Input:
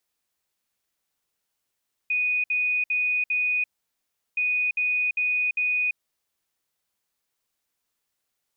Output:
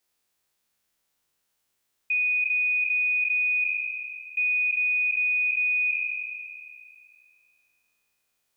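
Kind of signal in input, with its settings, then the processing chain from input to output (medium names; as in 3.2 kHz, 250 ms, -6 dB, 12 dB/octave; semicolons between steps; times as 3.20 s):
beep pattern sine 2.48 kHz, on 0.34 s, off 0.06 s, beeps 4, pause 0.73 s, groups 2, -21 dBFS
spectral sustain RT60 2.37 s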